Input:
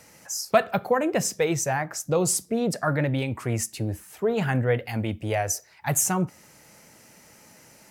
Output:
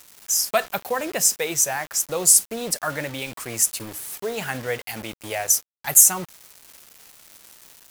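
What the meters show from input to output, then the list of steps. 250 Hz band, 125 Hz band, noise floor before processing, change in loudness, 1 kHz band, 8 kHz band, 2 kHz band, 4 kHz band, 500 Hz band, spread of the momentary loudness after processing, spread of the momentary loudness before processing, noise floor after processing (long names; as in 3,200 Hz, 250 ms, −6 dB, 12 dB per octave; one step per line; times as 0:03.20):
−7.5 dB, −12.0 dB, −54 dBFS, +5.5 dB, −1.5 dB, +10.5 dB, +1.5 dB, +7.0 dB, −3.5 dB, 16 LU, 7 LU, below −85 dBFS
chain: RIAA equalisation recording
bit-depth reduction 6 bits, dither none
level −1 dB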